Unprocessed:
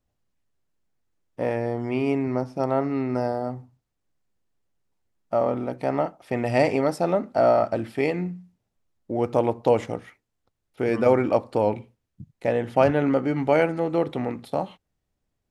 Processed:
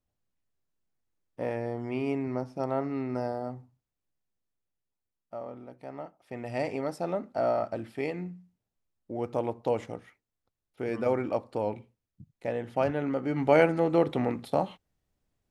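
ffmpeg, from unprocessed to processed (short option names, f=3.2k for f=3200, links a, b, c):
-af "volume=10dB,afade=t=out:st=3.46:d=1.97:silence=0.298538,afade=t=in:st=5.94:d=1.14:silence=0.375837,afade=t=in:st=13.18:d=0.42:silence=0.398107"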